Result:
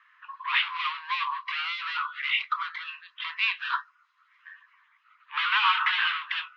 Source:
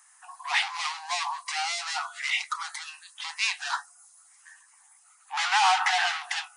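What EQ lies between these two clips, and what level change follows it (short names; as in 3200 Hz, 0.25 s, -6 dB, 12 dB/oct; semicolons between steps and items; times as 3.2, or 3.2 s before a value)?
steep high-pass 1000 Hz 96 dB/oct; steep low-pass 3300 Hz 36 dB/oct; dynamic EQ 1900 Hz, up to -6 dB, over -40 dBFS, Q 2.3; +5.0 dB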